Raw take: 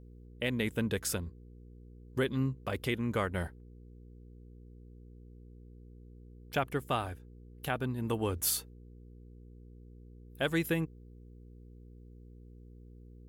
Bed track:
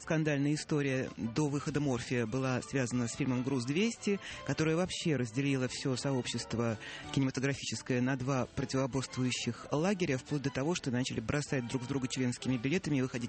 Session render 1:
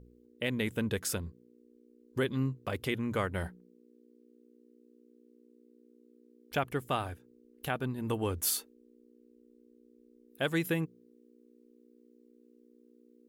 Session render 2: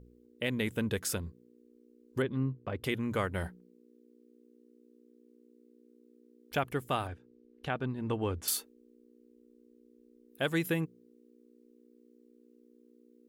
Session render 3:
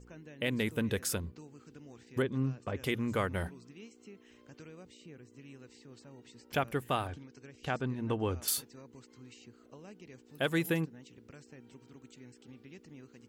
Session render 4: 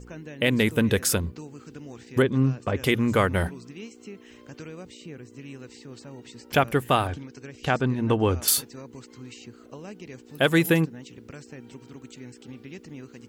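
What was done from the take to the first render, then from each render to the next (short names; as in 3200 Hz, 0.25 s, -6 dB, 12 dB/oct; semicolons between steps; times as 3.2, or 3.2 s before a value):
de-hum 60 Hz, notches 3
2.22–2.84 tape spacing loss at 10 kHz 28 dB; 7.07–8.48 air absorption 110 m
add bed track -20.5 dB
gain +10.5 dB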